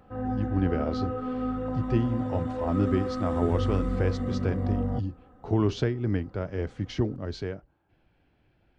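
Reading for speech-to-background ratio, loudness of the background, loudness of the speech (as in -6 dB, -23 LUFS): 0.5 dB, -31.0 LUFS, -30.5 LUFS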